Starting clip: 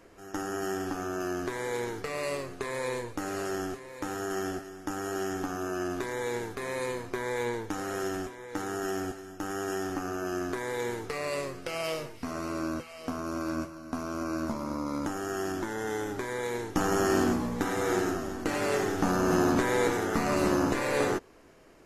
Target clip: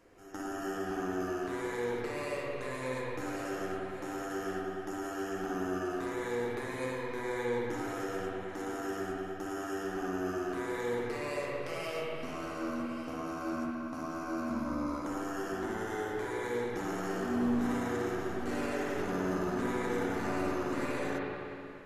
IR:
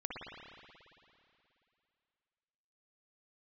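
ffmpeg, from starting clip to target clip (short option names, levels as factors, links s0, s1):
-filter_complex "[0:a]alimiter=limit=0.0668:level=0:latency=1:release=31[s0];[1:a]atrim=start_sample=2205[s1];[s0][s1]afir=irnorm=-1:irlink=0,volume=0.631"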